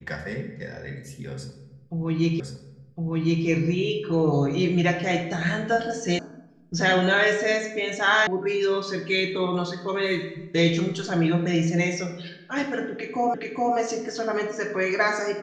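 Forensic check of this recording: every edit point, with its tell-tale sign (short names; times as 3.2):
2.4 repeat of the last 1.06 s
6.19 sound cut off
8.27 sound cut off
13.34 repeat of the last 0.42 s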